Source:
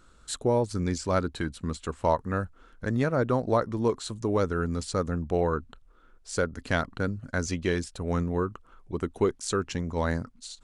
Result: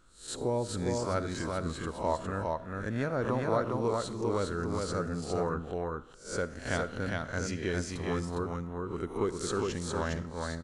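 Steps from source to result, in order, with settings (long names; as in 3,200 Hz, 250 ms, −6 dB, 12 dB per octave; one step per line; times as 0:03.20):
peak hold with a rise ahead of every peak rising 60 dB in 0.40 s
single-tap delay 408 ms −3 dB
convolution reverb RT60 0.50 s, pre-delay 15 ms, DRR 15 dB
level −7 dB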